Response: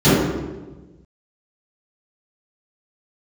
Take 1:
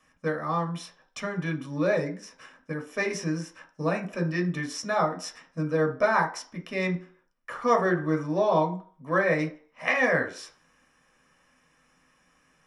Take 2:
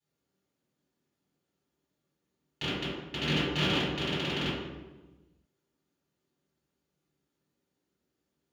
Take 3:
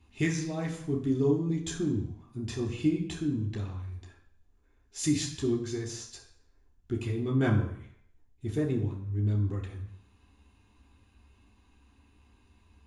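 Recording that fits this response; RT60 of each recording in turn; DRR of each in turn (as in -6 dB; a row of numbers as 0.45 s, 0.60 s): 2; 0.45 s, 1.2 s, 0.65 s; 2.0 dB, -18.0 dB, -2.5 dB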